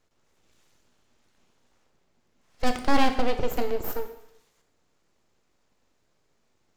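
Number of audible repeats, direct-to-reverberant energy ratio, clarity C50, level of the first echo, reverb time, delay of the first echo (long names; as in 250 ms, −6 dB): no echo audible, 6.5 dB, 9.5 dB, no echo audible, 0.75 s, no echo audible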